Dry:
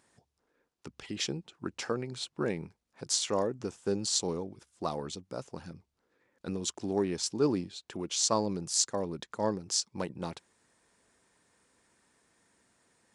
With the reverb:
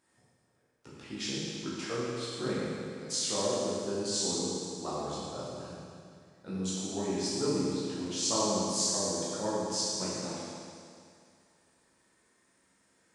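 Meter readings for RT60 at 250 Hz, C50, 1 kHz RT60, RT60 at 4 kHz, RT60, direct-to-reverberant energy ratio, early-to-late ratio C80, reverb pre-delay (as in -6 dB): 2.3 s, -3.5 dB, 2.3 s, 2.3 s, 2.3 s, -9.0 dB, -1.5 dB, 11 ms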